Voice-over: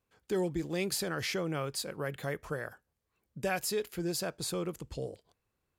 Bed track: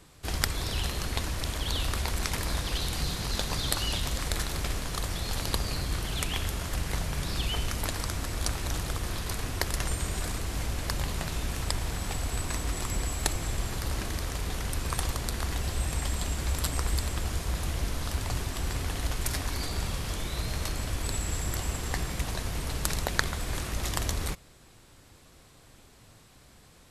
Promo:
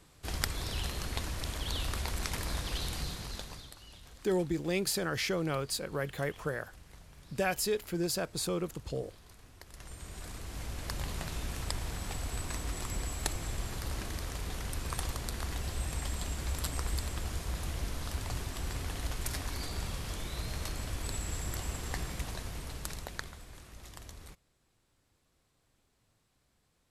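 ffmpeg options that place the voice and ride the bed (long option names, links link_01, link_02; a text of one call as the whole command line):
ffmpeg -i stem1.wav -i stem2.wav -filter_complex "[0:a]adelay=3950,volume=1.5dB[link_01];[1:a]volume=12.5dB,afade=type=out:start_time=2.88:duration=0.84:silence=0.125893,afade=type=in:start_time=9.66:duration=1.46:silence=0.133352,afade=type=out:start_time=22.07:duration=1.44:silence=0.223872[link_02];[link_01][link_02]amix=inputs=2:normalize=0" out.wav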